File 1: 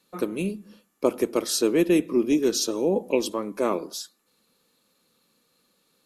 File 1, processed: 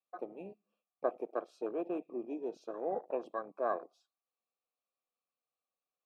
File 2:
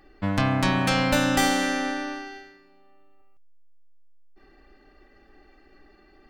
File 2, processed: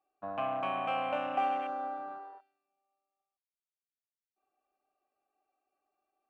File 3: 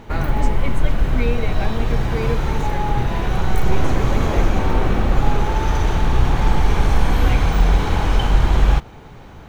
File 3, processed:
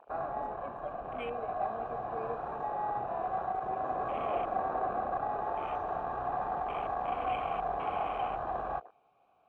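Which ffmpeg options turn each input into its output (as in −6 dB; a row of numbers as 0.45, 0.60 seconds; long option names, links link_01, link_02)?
-filter_complex "[0:a]aeval=exprs='0.841*(cos(1*acos(clip(val(0)/0.841,-1,1)))-cos(1*PI/2))+0.0106*(cos(4*acos(clip(val(0)/0.841,-1,1)))-cos(4*PI/2))+0.0422*(cos(5*acos(clip(val(0)/0.841,-1,1)))-cos(5*PI/2))+0.00473*(cos(6*acos(clip(val(0)/0.841,-1,1)))-cos(6*PI/2))':channel_layout=same,asplit=3[link_01][link_02][link_03];[link_01]bandpass=frequency=730:width_type=q:width=8,volume=0dB[link_04];[link_02]bandpass=frequency=1090:width_type=q:width=8,volume=-6dB[link_05];[link_03]bandpass=frequency=2440:width_type=q:width=8,volume=-9dB[link_06];[link_04][link_05][link_06]amix=inputs=3:normalize=0,afwtdn=0.00891"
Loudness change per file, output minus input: −14.5, −10.5, −14.5 LU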